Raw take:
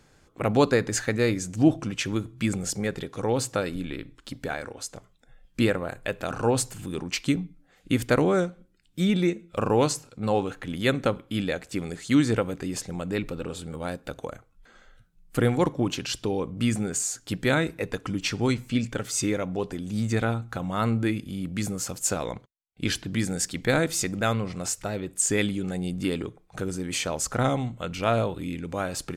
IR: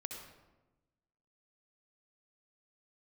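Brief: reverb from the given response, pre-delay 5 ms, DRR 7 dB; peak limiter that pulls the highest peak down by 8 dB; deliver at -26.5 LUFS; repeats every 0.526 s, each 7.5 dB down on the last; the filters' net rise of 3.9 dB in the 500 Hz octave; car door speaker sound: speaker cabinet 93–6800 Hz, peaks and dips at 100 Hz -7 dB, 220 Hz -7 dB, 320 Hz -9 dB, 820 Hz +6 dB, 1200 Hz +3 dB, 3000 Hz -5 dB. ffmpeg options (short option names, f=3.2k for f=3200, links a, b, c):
-filter_complex "[0:a]equalizer=f=500:t=o:g=5.5,alimiter=limit=-13.5dB:level=0:latency=1,aecho=1:1:526|1052|1578|2104|2630:0.422|0.177|0.0744|0.0312|0.0131,asplit=2[a][b];[1:a]atrim=start_sample=2205,adelay=5[c];[b][c]afir=irnorm=-1:irlink=0,volume=-5.5dB[d];[a][d]amix=inputs=2:normalize=0,highpass=93,equalizer=f=100:t=q:w=4:g=-7,equalizer=f=220:t=q:w=4:g=-7,equalizer=f=320:t=q:w=4:g=-9,equalizer=f=820:t=q:w=4:g=6,equalizer=f=1.2k:t=q:w=4:g=3,equalizer=f=3k:t=q:w=4:g=-5,lowpass=f=6.8k:w=0.5412,lowpass=f=6.8k:w=1.3066,volume=1dB"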